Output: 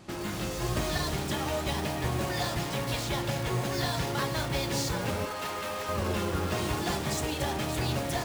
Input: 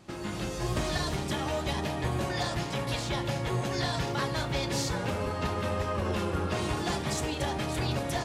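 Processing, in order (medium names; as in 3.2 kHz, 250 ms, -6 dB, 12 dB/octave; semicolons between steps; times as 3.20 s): 5.25–5.89 s: high-pass 730 Hz 6 dB/octave; in parallel at -5.5 dB: integer overflow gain 33 dB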